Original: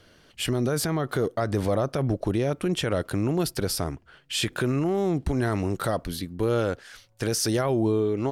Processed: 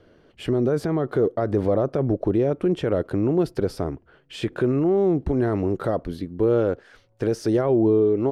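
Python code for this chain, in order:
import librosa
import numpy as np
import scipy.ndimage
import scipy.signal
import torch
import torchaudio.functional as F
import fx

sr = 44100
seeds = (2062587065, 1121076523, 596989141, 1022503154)

y = fx.lowpass(x, sr, hz=1200.0, slope=6)
y = fx.peak_eq(y, sr, hz=400.0, db=7.0, octaves=1.3)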